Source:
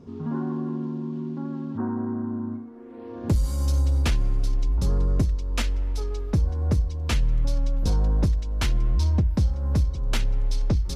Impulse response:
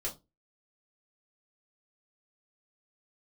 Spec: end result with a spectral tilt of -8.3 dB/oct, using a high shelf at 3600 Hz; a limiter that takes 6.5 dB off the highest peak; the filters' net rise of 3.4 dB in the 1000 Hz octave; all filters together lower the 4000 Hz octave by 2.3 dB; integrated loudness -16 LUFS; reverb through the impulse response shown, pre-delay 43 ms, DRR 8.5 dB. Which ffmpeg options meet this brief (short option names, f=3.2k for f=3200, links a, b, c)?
-filter_complex "[0:a]equalizer=f=1k:t=o:g=4,highshelf=f=3.6k:g=6.5,equalizer=f=4k:t=o:g=-8,alimiter=limit=-19.5dB:level=0:latency=1,asplit=2[a][b];[1:a]atrim=start_sample=2205,adelay=43[c];[b][c]afir=irnorm=-1:irlink=0,volume=-10dB[d];[a][d]amix=inputs=2:normalize=0,volume=11.5dB"